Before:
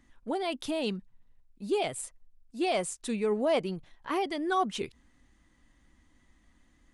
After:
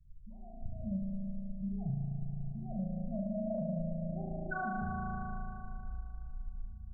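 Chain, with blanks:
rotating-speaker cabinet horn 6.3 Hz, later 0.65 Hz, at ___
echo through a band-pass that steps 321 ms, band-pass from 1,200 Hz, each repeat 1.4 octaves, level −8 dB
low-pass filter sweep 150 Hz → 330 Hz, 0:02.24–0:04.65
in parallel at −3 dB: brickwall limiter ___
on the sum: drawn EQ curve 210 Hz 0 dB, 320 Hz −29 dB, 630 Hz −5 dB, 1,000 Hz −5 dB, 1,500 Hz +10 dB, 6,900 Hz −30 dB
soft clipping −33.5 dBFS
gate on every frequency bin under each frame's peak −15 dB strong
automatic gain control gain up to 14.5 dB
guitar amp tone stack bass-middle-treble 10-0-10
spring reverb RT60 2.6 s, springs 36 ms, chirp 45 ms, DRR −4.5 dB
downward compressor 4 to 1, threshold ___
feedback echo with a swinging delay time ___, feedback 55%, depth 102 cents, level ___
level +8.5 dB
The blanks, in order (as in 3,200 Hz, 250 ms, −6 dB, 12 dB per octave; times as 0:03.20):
0:01.88, −30.5 dBFS, −42 dBFS, 88 ms, −19.5 dB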